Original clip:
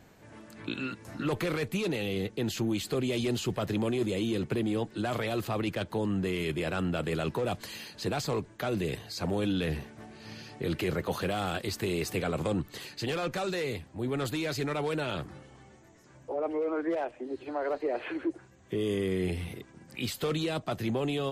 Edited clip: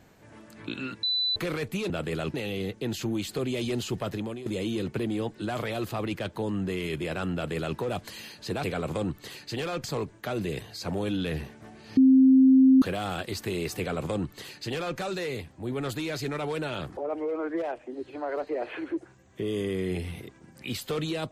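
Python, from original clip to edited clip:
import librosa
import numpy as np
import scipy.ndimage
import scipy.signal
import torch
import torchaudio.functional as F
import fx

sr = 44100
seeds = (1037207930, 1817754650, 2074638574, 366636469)

y = fx.edit(x, sr, fx.bleep(start_s=1.03, length_s=0.33, hz=3990.0, db=-23.5),
    fx.fade_out_to(start_s=3.61, length_s=0.41, floor_db=-13.0),
    fx.duplicate(start_s=6.9, length_s=0.44, to_s=1.9),
    fx.bleep(start_s=10.33, length_s=0.85, hz=263.0, db=-13.5),
    fx.duplicate(start_s=12.14, length_s=1.2, to_s=8.2),
    fx.cut(start_s=15.33, length_s=0.97), tone=tone)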